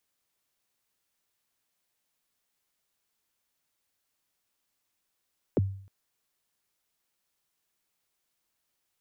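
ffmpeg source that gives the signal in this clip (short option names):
-f lavfi -i "aevalsrc='0.119*pow(10,-3*t/0.55)*sin(2*PI*(560*0.025/log(97/560)*(exp(log(97/560)*min(t,0.025)/0.025)-1)+97*max(t-0.025,0)))':d=0.31:s=44100"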